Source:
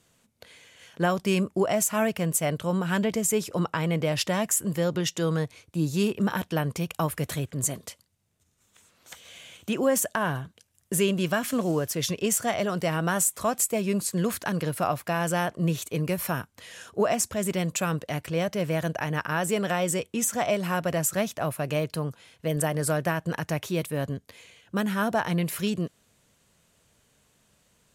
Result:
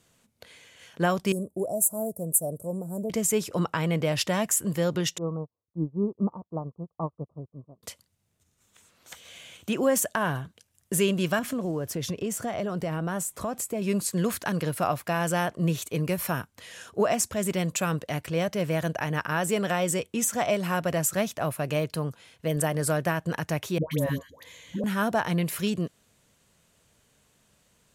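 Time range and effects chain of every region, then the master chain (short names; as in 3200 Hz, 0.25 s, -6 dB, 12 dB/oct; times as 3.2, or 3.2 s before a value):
1.32–3.1 Chebyshev band-stop 600–9200 Hz, order 3 + tilt shelf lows -7 dB, about 840 Hz + mismatched tape noise reduction decoder only
5.18–7.83 steep low-pass 1200 Hz 96 dB/oct + upward expander 2.5:1, over -42 dBFS
11.39–13.82 tilt shelf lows +4.5 dB, about 1200 Hz + compressor 3:1, threshold -28 dBFS
23.78–24.84 ripple EQ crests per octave 1.1, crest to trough 8 dB + upward compressor, threshold -43 dBFS + dispersion highs, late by 0.135 s, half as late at 790 Hz
whole clip: dry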